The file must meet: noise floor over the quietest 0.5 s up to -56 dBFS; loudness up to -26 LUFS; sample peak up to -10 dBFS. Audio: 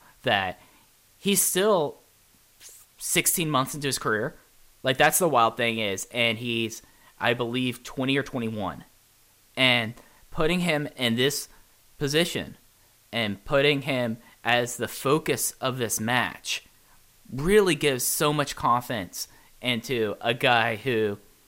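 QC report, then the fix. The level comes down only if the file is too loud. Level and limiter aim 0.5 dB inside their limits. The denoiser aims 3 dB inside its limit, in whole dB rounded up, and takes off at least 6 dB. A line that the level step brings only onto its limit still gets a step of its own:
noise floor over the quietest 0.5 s -60 dBFS: OK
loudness -25.0 LUFS: fail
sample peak -6.5 dBFS: fail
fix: gain -1.5 dB; limiter -10.5 dBFS

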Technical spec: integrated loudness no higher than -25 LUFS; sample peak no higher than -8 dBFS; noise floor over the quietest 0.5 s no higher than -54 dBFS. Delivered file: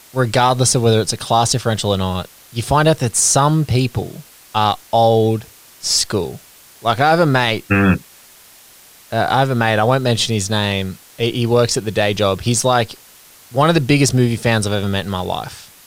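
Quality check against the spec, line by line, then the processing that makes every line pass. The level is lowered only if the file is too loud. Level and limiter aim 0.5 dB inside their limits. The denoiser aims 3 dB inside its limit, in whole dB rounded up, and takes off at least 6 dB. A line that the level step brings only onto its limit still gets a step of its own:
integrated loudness -16.5 LUFS: fail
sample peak -3.5 dBFS: fail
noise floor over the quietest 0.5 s -45 dBFS: fail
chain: denoiser 6 dB, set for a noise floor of -45 dBFS; gain -9 dB

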